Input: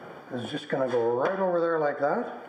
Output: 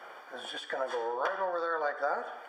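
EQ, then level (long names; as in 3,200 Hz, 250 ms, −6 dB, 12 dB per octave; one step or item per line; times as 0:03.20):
high-pass filter 810 Hz 12 dB per octave
dynamic equaliser 2,200 Hz, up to −7 dB, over −57 dBFS, Q 5
0.0 dB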